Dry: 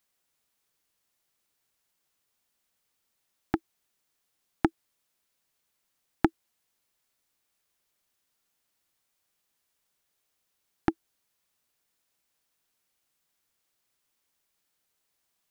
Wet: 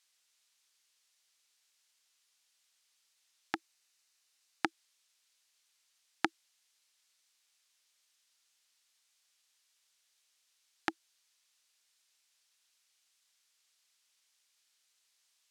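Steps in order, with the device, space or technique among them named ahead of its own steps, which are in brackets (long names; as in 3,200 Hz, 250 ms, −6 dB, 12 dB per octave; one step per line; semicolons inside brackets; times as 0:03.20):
piezo pickup straight into a mixer (low-pass filter 5,200 Hz 12 dB per octave; first difference)
0:03.55–0:04.67: notch filter 3,300 Hz, Q 14
level +14 dB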